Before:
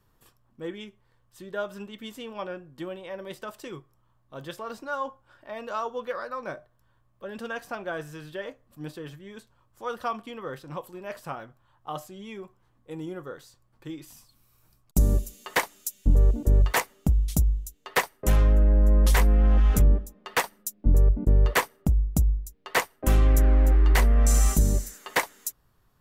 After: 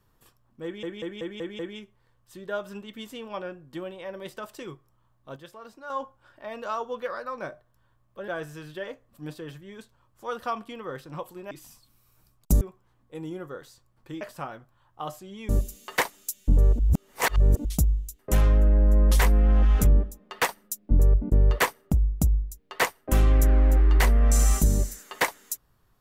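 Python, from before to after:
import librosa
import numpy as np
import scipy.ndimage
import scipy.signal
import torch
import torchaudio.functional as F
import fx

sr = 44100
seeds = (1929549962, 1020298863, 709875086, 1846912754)

y = fx.edit(x, sr, fx.stutter(start_s=0.64, slice_s=0.19, count=6),
    fx.clip_gain(start_s=4.41, length_s=0.54, db=-8.5),
    fx.cut(start_s=7.33, length_s=0.53),
    fx.swap(start_s=11.09, length_s=1.28, other_s=13.97, other_length_s=1.1),
    fx.reverse_span(start_s=16.37, length_s=0.86),
    fx.cut(start_s=17.77, length_s=0.37), tone=tone)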